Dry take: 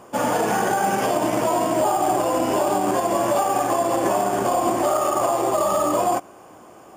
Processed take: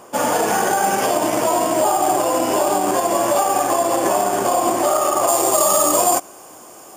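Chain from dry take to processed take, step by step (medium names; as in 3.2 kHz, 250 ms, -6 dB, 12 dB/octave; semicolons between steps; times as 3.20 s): tone controls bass -6 dB, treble +5 dB, from 5.27 s treble +14 dB; trim +3 dB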